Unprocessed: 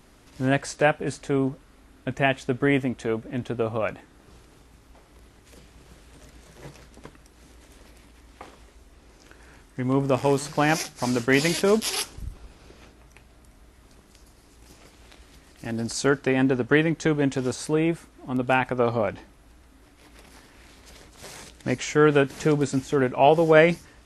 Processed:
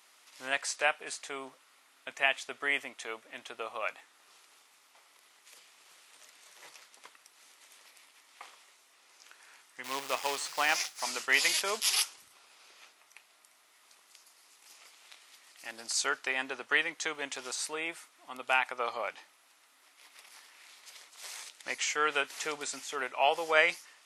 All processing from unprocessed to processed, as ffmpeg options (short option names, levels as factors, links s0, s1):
-filter_complex "[0:a]asettb=1/sr,asplit=3[s0][s1][s2];[s0]atrim=end=9.844[s3];[s1]atrim=start=9.84:end=11.02,asetpts=PTS-STARTPTS,afade=t=in:d=0.004:c=qsin,afade=t=out:st=1.176:d=0.004:c=qsin,acrusher=bits=3:mode=log:mix=0:aa=0.000001,acrossover=split=6500[s4][s5];[s5]acompressor=threshold=0.01:ratio=4:attack=1:release=60[s6];[s4][s6]amix=inputs=2:normalize=0[s7];[s2]atrim=start=11.016[s8];[s3][s7]acrossfade=d=0.004:c1=hsin:c2=qsin[s9];[s9][s8]acrossfade=d=0.004:c1=qsin:c2=hsin,highpass=1200,equalizer=f=1600:w=5.1:g=-5"